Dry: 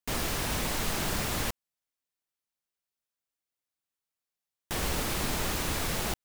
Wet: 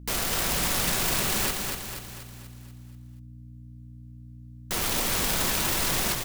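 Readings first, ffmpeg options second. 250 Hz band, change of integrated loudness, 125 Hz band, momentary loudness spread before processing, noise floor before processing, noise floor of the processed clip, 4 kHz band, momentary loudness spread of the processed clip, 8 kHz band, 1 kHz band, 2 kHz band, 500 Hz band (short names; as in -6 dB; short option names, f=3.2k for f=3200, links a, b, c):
+2.0 dB, +5.5 dB, +1.5 dB, 3 LU, under -85 dBFS, -45 dBFS, +6.0 dB, 15 LU, +7.5 dB, +3.5 dB, +4.5 dB, +2.5 dB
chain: -filter_complex "[0:a]aecho=1:1:5.3:0.36,asplit=2[a][b];[b]alimiter=level_in=4dB:limit=-24dB:level=0:latency=1:release=210,volume=-4dB,volume=0dB[c];[a][c]amix=inputs=2:normalize=0,aeval=exprs='(mod(11.9*val(0)+1,2)-1)/11.9':c=same,aeval=exprs='val(0)+0.00708*(sin(2*PI*60*n/s)+sin(2*PI*2*60*n/s)/2+sin(2*PI*3*60*n/s)/3+sin(2*PI*4*60*n/s)/4+sin(2*PI*5*60*n/s)/5)':c=same,aecho=1:1:241|482|723|964|1205|1446|1687:0.596|0.304|0.155|0.079|0.0403|0.0206|0.0105"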